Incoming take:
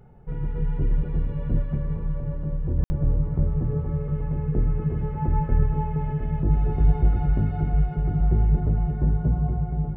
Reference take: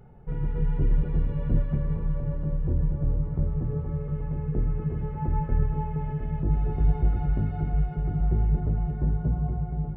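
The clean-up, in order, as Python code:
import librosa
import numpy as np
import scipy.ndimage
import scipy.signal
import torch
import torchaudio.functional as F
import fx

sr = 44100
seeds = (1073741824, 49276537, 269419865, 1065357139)

y = fx.fix_ambience(x, sr, seeds[0], print_start_s=0.0, print_end_s=0.5, start_s=2.84, end_s=2.9)
y = fx.fix_level(y, sr, at_s=2.78, step_db=-3.5)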